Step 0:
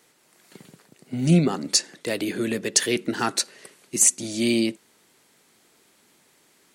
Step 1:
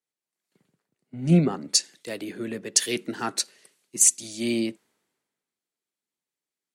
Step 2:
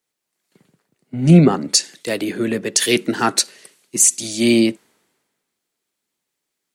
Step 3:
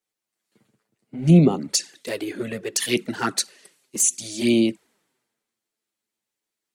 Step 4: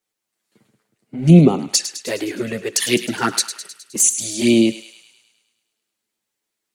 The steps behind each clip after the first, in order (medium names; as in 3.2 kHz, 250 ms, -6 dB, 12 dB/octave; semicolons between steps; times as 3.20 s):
three bands expanded up and down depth 70%; trim -6.5 dB
loudness maximiser +12.5 dB; trim -1 dB
touch-sensitive flanger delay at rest 9.2 ms, full sweep at -10.5 dBFS; trim -3.5 dB
thinning echo 104 ms, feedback 63%, high-pass 1.1 kHz, level -11 dB; trim +4.5 dB